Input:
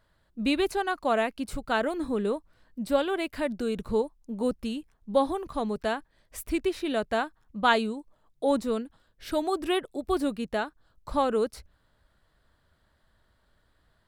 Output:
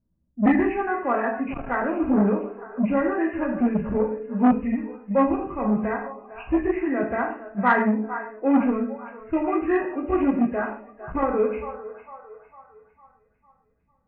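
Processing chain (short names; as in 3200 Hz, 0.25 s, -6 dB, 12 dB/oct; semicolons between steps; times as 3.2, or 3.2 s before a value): nonlinear frequency compression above 1600 Hz 4:1; graphic EQ 125/250/500 Hz +4/+11/-5 dB; low-pass opened by the level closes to 400 Hz, open at -22 dBFS; air absorption 500 m; on a send: split-band echo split 480 Hz, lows 0.111 s, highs 0.453 s, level -12 dB; on the sum: spectral noise reduction 11 dB; non-linear reverb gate 0.19 s falling, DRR -1 dB; core saturation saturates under 580 Hz; gain +2.5 dB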